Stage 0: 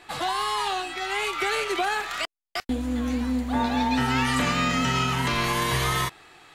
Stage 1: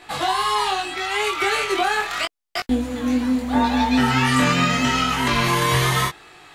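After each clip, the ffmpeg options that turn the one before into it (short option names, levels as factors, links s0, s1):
-af "flanger=delay=19:depth=4.8:speed=0.79,volume=2.51"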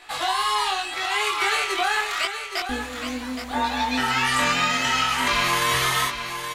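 -filter_complex "[0:a]equalizer=f=160:w=0.42:g=-14,asplit=2[s0][s1];[s1]aecho=0:1:820:0.376[s2];[s0][s2]amix=inputs=2:normalize=0"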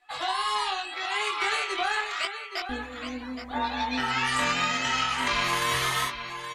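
-af "afftdn=nr=18:nf=-39,aeval=exprs='0.335*(cos(1*acos(clip(val(0)/0.335,-1,1)))-cos(1*PI/2))+0.0299*(cos(3*acos(clip(val(0)/0.335,-1,1)))-cos(3*PI/2))':c=same,volume=0.75"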